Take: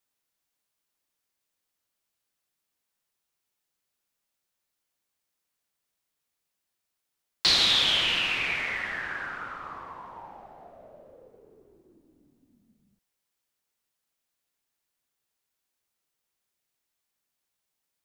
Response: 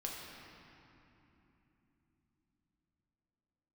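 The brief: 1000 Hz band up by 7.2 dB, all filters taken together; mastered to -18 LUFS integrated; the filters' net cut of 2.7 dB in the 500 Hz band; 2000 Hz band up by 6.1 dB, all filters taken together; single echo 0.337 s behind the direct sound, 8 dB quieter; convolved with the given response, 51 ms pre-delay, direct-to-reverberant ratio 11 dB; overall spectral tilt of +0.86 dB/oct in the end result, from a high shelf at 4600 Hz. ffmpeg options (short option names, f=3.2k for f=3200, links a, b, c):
-filter_complex "[0:a]equalizer=f=500:t=o:g=-7.5,equalizer=f=1k:t=o:g=9,equalizer=f=2k:t=o:g=4,highshelf=f=4.6k:g=8,aecho=1:1:337:0.398,asplit=2[a][b];[1:a]atrim=start_sample=2205,adelay=51[c];[b][c]afir=irnorm=-1:irlink=0,volume=-11.5dB[d];[a][d]amix=inputs=2:normalize=0,volume=0.5dB"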